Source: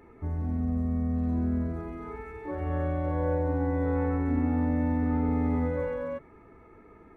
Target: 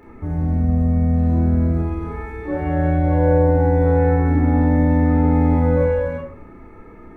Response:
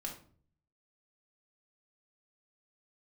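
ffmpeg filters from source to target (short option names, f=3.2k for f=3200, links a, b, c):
-filter_complex "[0:a]asplit=2[a][b];[1:a]atrim=start_sample=2205,lowshelf=f=150:g=5,adelay=30[c];[b][c]afir=irnorm=-1:irlink=0,volume=0dB[d];[a][d]amix=inputs=2:normalize=0,volume=7dB"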